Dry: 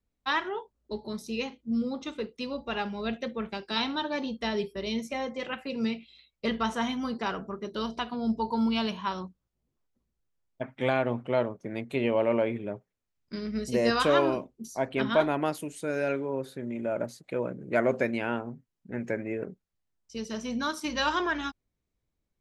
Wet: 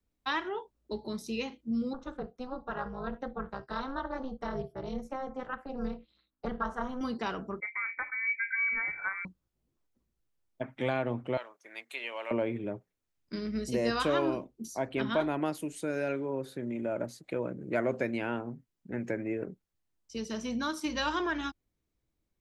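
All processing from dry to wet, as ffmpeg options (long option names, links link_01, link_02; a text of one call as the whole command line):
ffmpeg -i in.wav -filter_complex "[0:a]asettb=1/sr,asplit=3[link_01][link_02][link_03];[link_01]atrim=end=1.934[link_04];[link_02]atrim=start=1.93:end=7.01,asetpts=PTS-STARTPTS,afade=type=in:duration=0.004:curve=qsin,afade=type=out:start_time=5.076:duration=0.004:curve=qsin,highshelf=frequency=1800:width_type=q:width=3:gain=-9.5,tremolo=f=260:d=0.974,bandreject=frequency=340:width=5.3[link_05];[link_03]atrim=start=7.006[link_06];[link_04][link_05]acrossfade=duration=0.004:curve1=hsin:curve2=qsin[link_07];[link_07][link_06]acrossfade=duration=0.004:curve1=qsin:curve2=hsin,asettb=1/sr,asplit=3[link_08][link_09][link_10];[link_08]atrim=end=7.604[link_11];[link_09]atrim=start=7.6:end=9.25,asetpts=PTS-STARTPTS,afade=type=in:duration=0.004:curve=qsin,afade=type=out:start_time=1.646:duration=0.004:curve=qsin,agate=range=-33dB:threshold=-43dB:ratio=3:release=100:detection=peak,lowpass=frequency=2100:width_type=q:width=0.5098,lowpass=frequency=2100:width_type=q:width=0.6013,lowpass=frequency=2100:width_type=q:width=0.9,lowpass=frequency=2100:width_type=q:width=2.563,afreqshift=-2500[link_12];[link_10]atrim=start=9.246[link_13];[link_11][link_12]acrossfade=duration=0.004:curve1=hsin:curve2=qsin[link_14];[link_14][link_13]acrossfade=duration=0.004:curve1=qsin:curve2=hsin,asettb=1/sr,asplit=3[link_15][link_16][link_17];[link_15]atrim=end=11.374[link_18];[link_16]atrim=start=11.37:end=12.31,asetpts=PTS-STARTPTS,afade=type=in:duration=0.004:curve=qsin,afade=type=out:start_time=0.936:duration=0.004:curve=qsin,highpass=1300,highshelf=frequency=7700:gain=4[link_19];[link_17]atrim=start=12.306[link_20];[link_18][link_19]acrossfade=duration=0.004:curve1=hsin:curve2=qsin[link_21];[link_21][link_20]acrossfade=duration=0.004:curve1=qsin:curve2=hsin,equalizer=frequency=320:width_type=o:width=0.23:gain=5.5,acrossover=split=120[link_22][link_23];[link_23]acompressor=threshold=-35dB:ratio=1.5[link_24];[link_22][link_24]amix=inputs=2:normalize=0" out.wav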